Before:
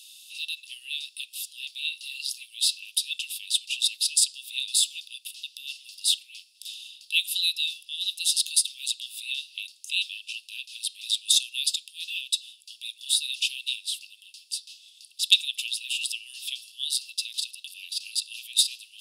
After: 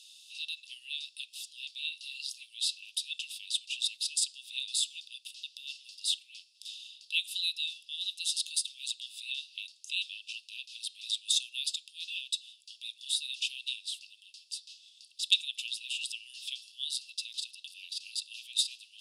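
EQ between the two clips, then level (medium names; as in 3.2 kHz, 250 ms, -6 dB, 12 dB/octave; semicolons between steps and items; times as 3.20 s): differentiator; dynamic bell 4.9 kHz, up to -4 dB, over -38 dBFS, Q 1.5; distance through air 110 m; +4.0 dB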